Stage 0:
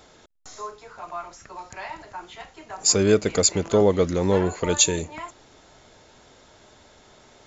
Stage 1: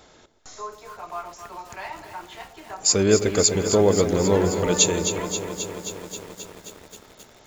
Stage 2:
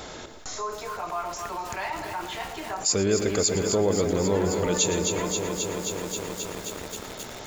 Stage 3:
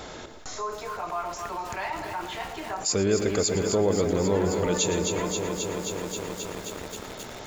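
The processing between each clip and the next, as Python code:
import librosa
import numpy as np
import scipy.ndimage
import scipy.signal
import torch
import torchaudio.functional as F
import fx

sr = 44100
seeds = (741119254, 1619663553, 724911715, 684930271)

y1 = fx.echo_alternate(x, sr, ms=127, hz=840.0, feedback_pct=60, wet_db=-10.5)
y1 = fx.echo_crushed(y1, sr, ms=266, feedback_pct=80, bits=7, wet_db=-9.5)
y2 = y1 + 10.0 ** (-16.5 / 20.0) * np.pad(y1, (int(112 * sr / 1000.0), 0))[:len(y1)]
y2 = fx.env_flatten(y2, sr, amount_pct=50)
y2 = F.gain(torch.from_numpy(y2), -7.0).numpy()
y3 = fx.high_shelf(y2, sr, hz=4600.0, db=-4.5)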